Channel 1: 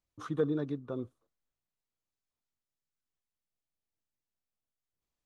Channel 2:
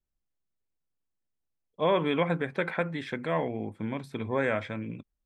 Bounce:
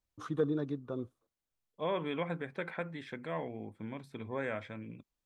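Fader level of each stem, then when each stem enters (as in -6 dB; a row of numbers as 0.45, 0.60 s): -1.0, -9.0 dB; 0.00, 0.00 s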